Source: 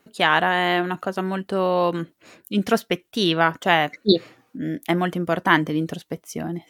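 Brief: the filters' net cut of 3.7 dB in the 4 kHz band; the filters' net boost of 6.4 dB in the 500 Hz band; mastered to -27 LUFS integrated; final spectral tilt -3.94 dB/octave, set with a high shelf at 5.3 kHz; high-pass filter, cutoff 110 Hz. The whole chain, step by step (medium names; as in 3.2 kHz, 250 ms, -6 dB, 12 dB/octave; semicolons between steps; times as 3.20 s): high-pass 110 Hz; peaking EQ 500 Hz +8.5 dB; peaking EQ 4 kHz -8 dB; treble shelf 5.3 kHz +7 dB; trim -8 dB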